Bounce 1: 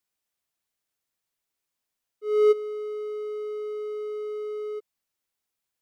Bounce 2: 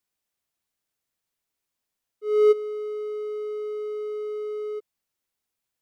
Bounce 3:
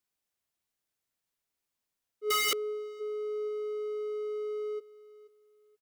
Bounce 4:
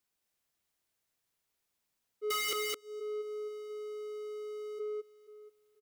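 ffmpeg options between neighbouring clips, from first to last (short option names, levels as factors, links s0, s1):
-af "lowshelf=f=420:g=3"
-af "aecho=1:1:481|962:0.133|0.0307,aeval=exprs='(mod(10*val(0)+1,2)-1)/10':c=same,volume=0.708"
-af "aecho=1:1:214:0.631,acompressor=threshold=0.0141:ratio=2.5,volume=1.26"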